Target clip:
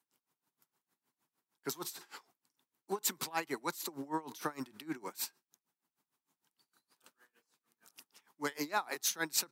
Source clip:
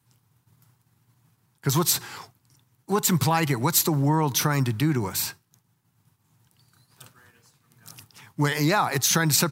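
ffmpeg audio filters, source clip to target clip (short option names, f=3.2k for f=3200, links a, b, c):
-af "highpass=f=250:w=0.5412,highpass=f=250:w=1.3066,aeval=exprs='val(0)*pow(10,-23*(0.5-0.5*cos(2*PI*6.5*n/s))/20)':c=same,volume=-7.5dB"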